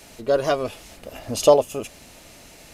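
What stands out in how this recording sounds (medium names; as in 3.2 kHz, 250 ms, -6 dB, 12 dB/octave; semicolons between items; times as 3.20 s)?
noise floor -47 dBFS; spectral tilt -4.0 dB/octave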